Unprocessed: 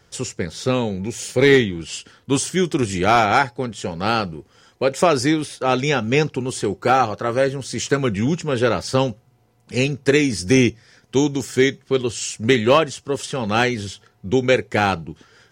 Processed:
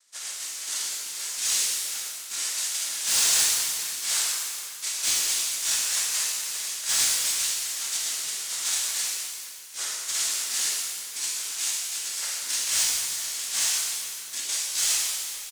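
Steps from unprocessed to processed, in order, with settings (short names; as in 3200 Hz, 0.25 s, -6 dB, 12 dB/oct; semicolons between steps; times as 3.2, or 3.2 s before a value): FFT order left unsorted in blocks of 256 samples; brick-wall FIR low-pass 4600 Hz; in parallel at -2 dB: compressor, threshold -32 dBFS, peak gain reduction 15.5 dB; on the sum: noise vocoder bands 3; differentiator; outdoor echo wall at 80 m, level -15 dB; overloaded stage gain 22 dB; shimmer reverb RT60 1.8 s, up +7 st, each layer -8 dB, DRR -6 dB; gain -2 dB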